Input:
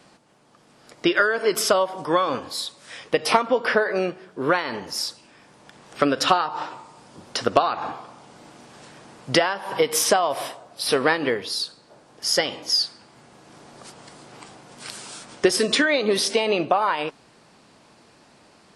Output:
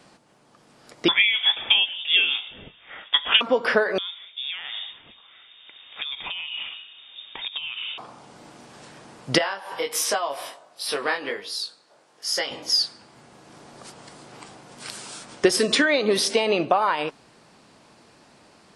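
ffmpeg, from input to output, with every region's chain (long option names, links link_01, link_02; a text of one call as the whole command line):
ffmpeg -i in.wav -filter_complex "[0:a]asettb=1/sr,asplit=3[link_01][link_02][link_03];[link_01]atrim=end=1.084[link_04];[link_02]atrim=start=1.08:end=3.41,asetpts=PTS-STARTPTS,afade=type=in:duration=0.004:curve=qsin,afade=type=out:start_time=2.326:duration=0.004:curve=qsin,asplit=2[link_05][link_06];[link_06]adelay=24,volume=-13dB[link_07];[link_05][link_07]amix=inputs=2:normalize=0,atrim=end_sample=102753,lowpass=frequency=3200:width_type=q:width=0.5098,lowpass=frequency=3200:width_type=q:width=0.6013,lowpass=frequency=3200:width_type=q:width=0.9,lowpass=frequency=3200:width_type=q:width=2.563,afreqshift=-3800[link_08];[link_03]atrim=start=3.406[link_09];[link_04][link_08]acrossfade=duration=0.004:curve1=hsin:curve2=qsin[link_10];[link_10][link_09]acrossfade=duration=0.004:curve1=qsin:curve2=hsin,asettb=1/sr,asplit=3[link_11][link_12][link_13];[link_11]atrim=end=3.984[link_14];[link_12]atrim=start=3.98:end=7.98,asetpts=PTS-STARTPTS,afade=type=in:duration=0.004:curve=qsin,afade=type=out:start_time=3.996:duration=0.004:curve=qsin,equalizer=frequency=110:width=1:gain=9,acompressor=threshold=-27dB:ratio=10:attack=3.2:release=140:knee=1:detection=peak,lowpass=frequency=3200:width_type=q:width=0.5098,lowpass=frequency=3200:width_type=q:width=0.6013,lowpass=frequency=3200:width_type=q:width=0.9,lowpass=frequency=3200:width_type=q:width=2.563,afreqshift=-3800[link_15];[link_13]atrim=start=7.976[link_16];[link_14][link_15]acrossfade=duration=0.004:curve1=hsin:curve2=qsin[link_17];[link_17][link_16]acrossfade=duration=0.004:curve1=qsin:curve2=hsin,asettb=1/sr,asplit=3[link_18][link_19][link_20];[link_18]atrim=end=9.384[link_21];[link_19]atrim=start=9.38:end=12.51,asetpts=PTS-STARTPTS,afade=type=in:duration=0.004:curve=qsin,afade=type=out:start_time=3.126:duration=0.004:curve=qsin,highpass=frequency=650:poles=1,flanger=delay=19:depth=3.4:speed=1.4[link_22];[link_20]atrim=start=12.506[link_23];[link_21][link_22]acrossfade=duration=0.004:curve1=hsin:curve2=qsin[link_24];[link_24][link_23]acrossfade=duration=0.004:curve1=qsin:curve2=hsin" out.wav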